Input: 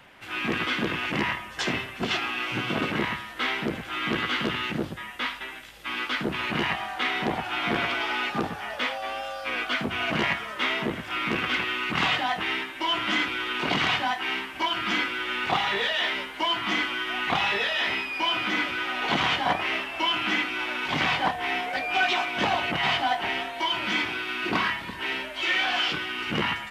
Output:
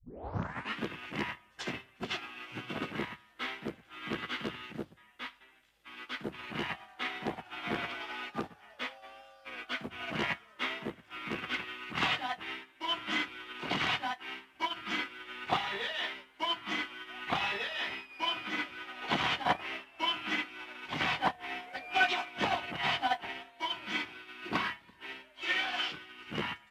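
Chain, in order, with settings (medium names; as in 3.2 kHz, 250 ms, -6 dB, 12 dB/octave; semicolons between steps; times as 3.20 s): tape start-up on the opening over 0.82 s; upward expansion 2.5:1, over -35 dBFS; trim -1.5 dB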